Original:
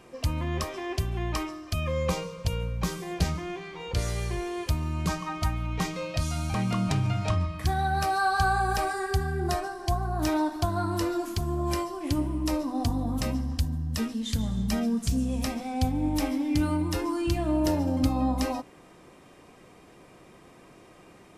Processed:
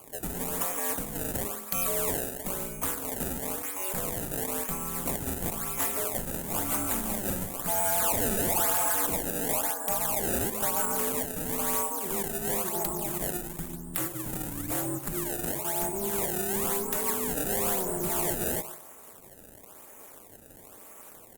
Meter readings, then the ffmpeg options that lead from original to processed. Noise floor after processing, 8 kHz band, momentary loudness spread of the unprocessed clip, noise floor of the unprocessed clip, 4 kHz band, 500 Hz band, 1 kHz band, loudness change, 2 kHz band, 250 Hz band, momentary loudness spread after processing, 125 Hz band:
−50 dBFS, +11.0 dB, 6 LU, −53 dBFS, −3.5 dB, 0.0 dB, −4.0 dB, +0.5 dB, −3.5 dB, −7.5 dB, 9 LU, −11.5 dB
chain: -filter_complex "[0:a]highpass=frequency=46:poles=1,acrossover=split=550[link_01][link_02];[link_02]acontrast=51[link_03];[link_01][link_03]amix=inputs=2:normalize=0,aeval=exprs='val(0)*sin(2*PI*95*n/s)':channel_layout=same,bass=frequency=250:gain=-8,treble=frequency=4000:gain=-10,asplit=2[link_04][link_05];[link_05]adelay=145,lowpass=frequency=1600:poles=1,volume=-14dB,asplit=2[link_06][link_07];[link_07]adelay=145,lowpass=frequency=1600:poles=1,volume=0.25,asplit=2[link_08][link_09];[link_09]adelay=145,lowpass=frequency=1600:poles=1,volume=0.25[link_10];[link_06][link_08][link_10]amix=inputs=3:normalize=0[link_11];[link_04][link_11]amix=inputs=2:normalize=0,acrusher=samples=23:mix=1:aa=0.000001:lfo=1:lforange=36.8:lforate=0.99,equalizer=frequency=3000:width_type=o:width=2:gain=-2,asoftclip=type=hard:threshold=-28dB,aexciter=amount=4.3:drive=8.3:freq=7000" -ar 48000 -c:a libopus -b:a 48k

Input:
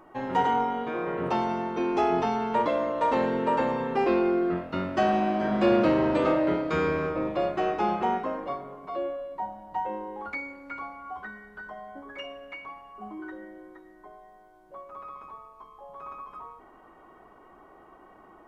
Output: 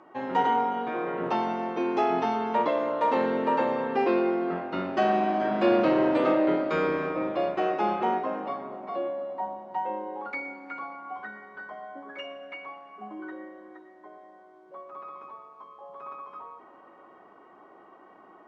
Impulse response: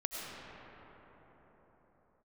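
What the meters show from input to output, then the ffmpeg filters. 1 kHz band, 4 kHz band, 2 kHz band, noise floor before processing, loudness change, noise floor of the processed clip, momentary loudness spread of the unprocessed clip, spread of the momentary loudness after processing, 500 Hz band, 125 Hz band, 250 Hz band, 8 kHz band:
+0.5 dB, −0.5 dB, 0.0 dB, −54 dBFS, 0.0 dB, −53 dBFS, 19 LU, 19 LU, +0.5 dB, −5.0 dB, −1.0 dB, can't be measured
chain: -filter_complex "[0:a]highpass=190,lowpass=5300,asplit=2[link_01][link_02];[1:a]atrim=start_sample=2205,adelay=118[link_03];[link_02][link_03]afir=irnorm=-1:irlink=0,volume=-15.5dB[link_04];[link_01][link_04]amix=inputs=2:normalize=0"

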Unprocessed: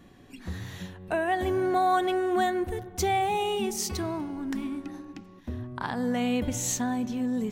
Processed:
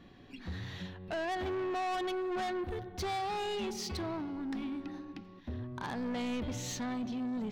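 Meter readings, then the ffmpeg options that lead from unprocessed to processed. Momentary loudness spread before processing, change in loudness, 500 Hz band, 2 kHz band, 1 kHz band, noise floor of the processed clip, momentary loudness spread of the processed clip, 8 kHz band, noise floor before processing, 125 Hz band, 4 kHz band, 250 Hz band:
15 LU, −8.5 dB, −8.5 dB, −7.5 dB, −9.5 dB, −54 dBFS, 10 LU, −12.5 dB, −51 dBFS, −6.0 dB, −5.0 dB, −7.0 dB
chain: -af "highshelf=frequency=6100:width_type=q:width=1.5:gain=-12,asoftclip=type=tanh:threshold=-30dB,volume=-2.5dB"

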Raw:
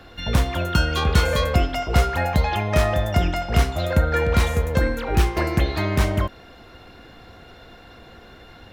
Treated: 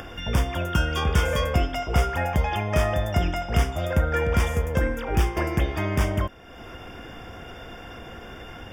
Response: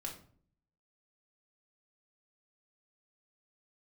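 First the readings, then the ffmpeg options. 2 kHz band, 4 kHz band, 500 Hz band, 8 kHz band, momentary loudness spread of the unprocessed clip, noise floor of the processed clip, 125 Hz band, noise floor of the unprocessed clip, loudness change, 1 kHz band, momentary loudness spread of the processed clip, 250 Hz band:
−3.0 dB, −4.5 dB, −3.0 dB, −3.5 dB, 3 LU, −42 dBFS, −3.0 dB, −46 dBFS, −3.0 dB, −3.0 dB, 17 LU, −3.5 dB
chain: -af "acompressor=mode=upward:threshold=-27dB:ratio=2.5,aeval=exprs='clip(val(0),-1,0.282)':channel_layout=same,asuperstop=centerf=4100:order=8:qfactor=4.2,volume=-3dB"

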